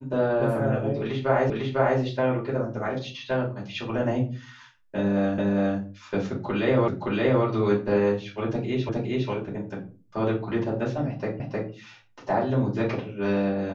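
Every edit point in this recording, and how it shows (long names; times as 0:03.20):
0:01.50: the same again, the last 0.5 s
0:05.38: the same again, the last 0.41 s
0:06.88: the same again, the last 0.57 s
0:08.89: the same again, the last 0.41 s
0:11.40: the same again, the last 0.31 s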